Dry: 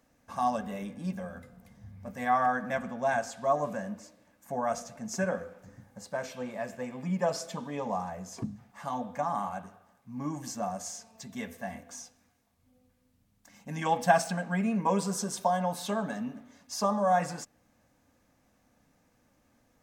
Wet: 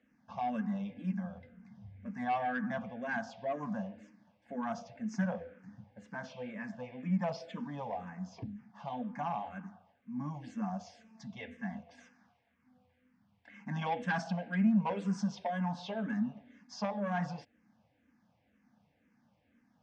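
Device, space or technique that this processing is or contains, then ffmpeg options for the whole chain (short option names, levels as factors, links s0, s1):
barber-pole phaser into a guitar amplifier: -filter_complex "[0:a]asplit=2[s0][s1];[s1]afreqshift=-2[s2];[s0][s2]amix=inputs=2:normalize=1,asoftclip=type=tanh:threshold=0.0562,highpass=90,equalizer=f=210:t=q:w=4:g=7,equalizer=f=380:t=q:w=4:g=-9,equalizer=f=570:t=q:w=4:g=-4,equalizer=f=1200:t=q:w=4:g=-6,equalizer=f=4000:t=q:w=4:g=-7,lowpass=f=4400:w=0.5412,lowpass=f=4400:w=1.3066,asplit=3[s3][s4][s5];[s3]afade=t=out:st=11.97:d=0.02[s6];[s4]equalizer=f=1300:t=o:w=2.1:g=10,afade=t=in:st=11.97:d=0.02,afade=t=out:st=13.84:d=0.02[s7];[s5]afade=t=in:st=13.84:d=0.02[s8];[s6][s7][s8]amix=inputs=3:normalize=0"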